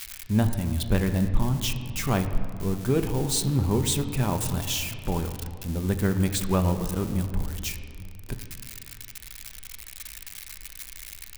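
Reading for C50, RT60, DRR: 9.0 dB, 2.4 s, 7.0 dB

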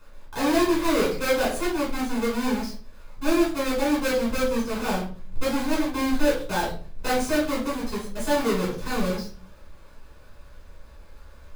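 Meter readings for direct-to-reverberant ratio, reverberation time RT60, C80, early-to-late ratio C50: -7.5 dB, 0.40 s, 11.0 dB, 6.0 dB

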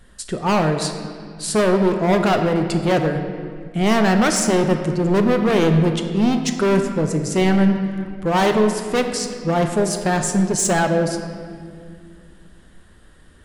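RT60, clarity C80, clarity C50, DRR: 2.2 s, 7.5 dB, 6.5 dB, 5.0 dB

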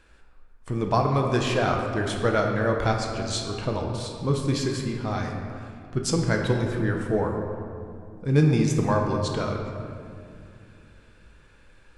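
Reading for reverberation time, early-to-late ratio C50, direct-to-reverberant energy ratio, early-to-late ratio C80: 2.5 s, 3.5 dB, 1.0 dB, 4.5 dB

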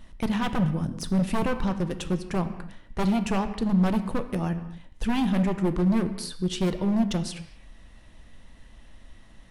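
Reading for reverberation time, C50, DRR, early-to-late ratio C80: no single decay rate, 11.5 dB, 9.0 dB, 12.5 dB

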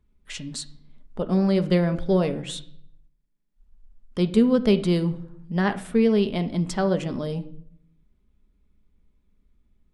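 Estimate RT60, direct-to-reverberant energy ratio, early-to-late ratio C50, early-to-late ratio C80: 0.65 s, 8.0 dB, 15.0 dB, 19.0 dB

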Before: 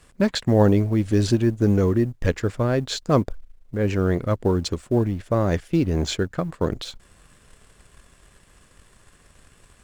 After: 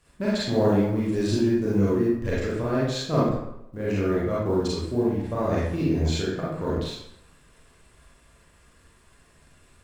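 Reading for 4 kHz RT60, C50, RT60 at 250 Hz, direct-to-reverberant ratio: 0.60 s, -2.0 dB, 0.75 s, -8.0 dB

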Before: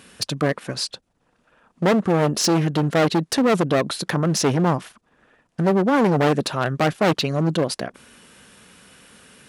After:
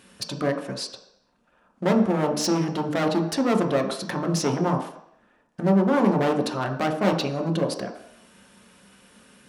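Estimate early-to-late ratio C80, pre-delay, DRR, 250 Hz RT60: 11.0 dB, 3 ms, 2.5 dB, 0.55 s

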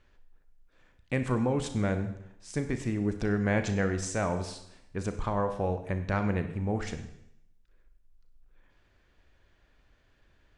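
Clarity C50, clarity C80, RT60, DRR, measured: 9.5 dB, 12.0 dB, 0.75 s, 8.0 dB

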